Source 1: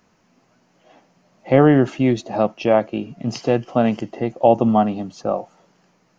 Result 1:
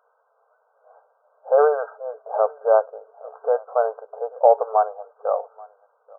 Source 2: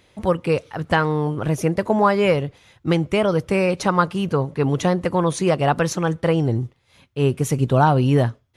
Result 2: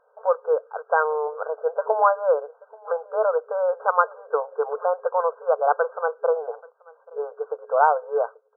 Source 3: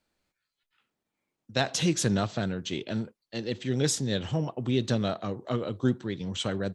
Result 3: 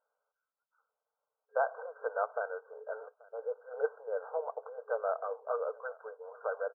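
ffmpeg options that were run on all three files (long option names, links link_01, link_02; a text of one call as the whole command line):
ffmpeg -i in.wav -af "aeval=exprs='0.891*(cos(1*acos(clip(val(0)/0.891,-1,1)))-cos(1*PI/2))+0.00891*(cos(8*acos(clip(val(0)/0.891,-1,1)))-cos(8*PI/2))':channel_layout=same,afftfilt=real='re*between(b*sr/4096,420,1600)':imag='im*between(b*sr/4096,420,1600)':win_size=4096:overlap=0.75,aecho=1:1:833:0.0631" out.wav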